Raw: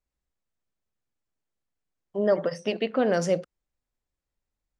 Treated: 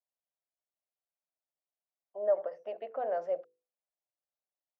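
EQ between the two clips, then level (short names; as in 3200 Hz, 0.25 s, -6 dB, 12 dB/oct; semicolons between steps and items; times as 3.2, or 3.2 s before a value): ladder band-pass 730 Hz, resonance 60%; notches 50/100/150/200/250/300/350/400/450/500 Hz; 0.0 dB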